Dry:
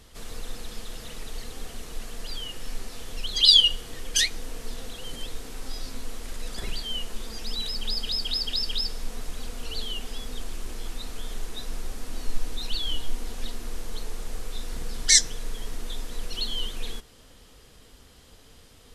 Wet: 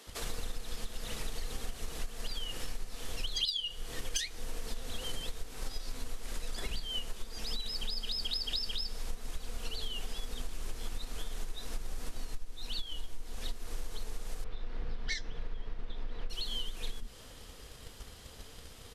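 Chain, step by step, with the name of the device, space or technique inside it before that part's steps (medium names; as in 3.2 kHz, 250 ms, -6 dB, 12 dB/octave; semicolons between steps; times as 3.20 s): 14.44–16.30 s: distance through air 310 m; bands offset in time highs, lows 70 ms, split 260 Hz; drum-bus smash (transient shaper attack +7 dB, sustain +1 dB; compression 16:1, threshold -31 dBFS, peak gain reduction 25.5 dB; saturation -21.5 dBFS, distortion -30 dB); trim +1.5 dB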